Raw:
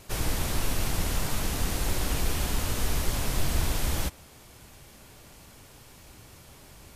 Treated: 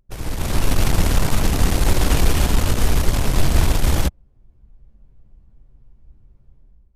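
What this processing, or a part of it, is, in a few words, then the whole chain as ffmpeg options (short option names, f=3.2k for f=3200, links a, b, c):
voice memo with heavy noise removal: -af "anlmdn=25.1,dynaudnorm=f=190:g=5:m=14dB"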